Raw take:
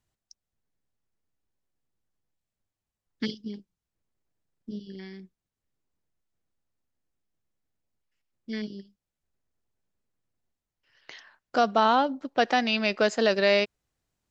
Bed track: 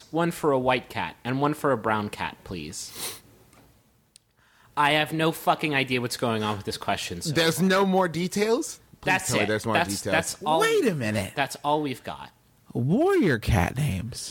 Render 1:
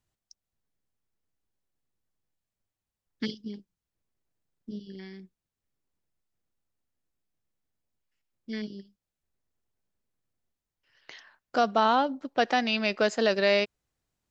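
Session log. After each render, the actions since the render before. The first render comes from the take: gain -1.5 dB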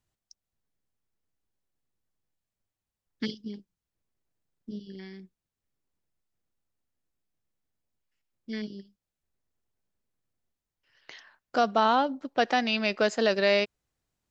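nothing audible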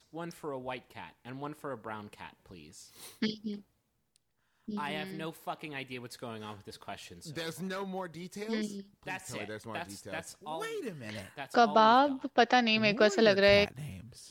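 add bed track -16.5 dB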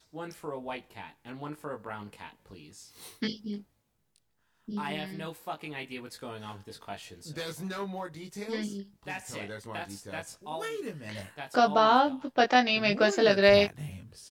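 doubler 20 ms -4 dB

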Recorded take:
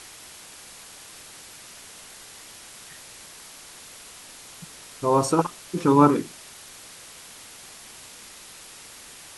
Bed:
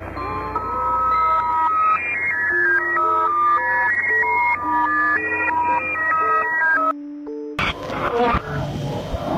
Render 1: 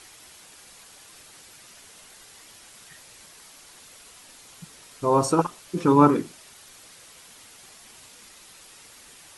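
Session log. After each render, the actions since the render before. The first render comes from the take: denoiser 6 dB, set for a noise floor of -45 dBFS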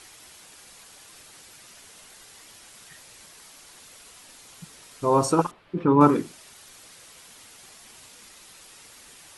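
5.51–6.01 air absorption 440 m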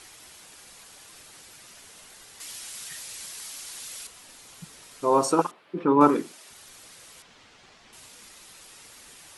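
2.4–4.07 high shelf 2000 Hz +11 dB; 5.01–6.5 HPF 250 Hz; 7.22–7.93 air absorption 140 m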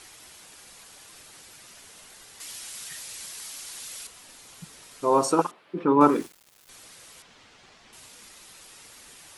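6.11–6.69 sample gate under -41.5 dBFS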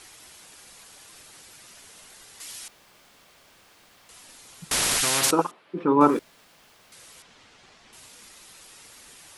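2.68–4.09 room tone; 4.71–5.31 spectral compressor 10:1; 6.19–6.92 room tone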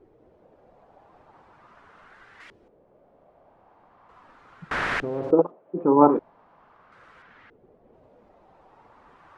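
LFO low-pass saw up 0.4 Hz 420–1800 Hz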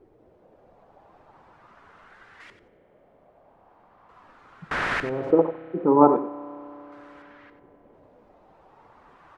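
echo 92 ms -11.5 dB; spring tank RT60 3.7 s, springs 31 ms, chirp 75 ms, DRR 17.5 dB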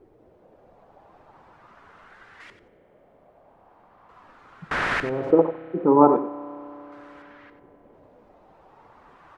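gain +1.5 dB; limiter -3 dBFS, peak gain reduction 2 dB

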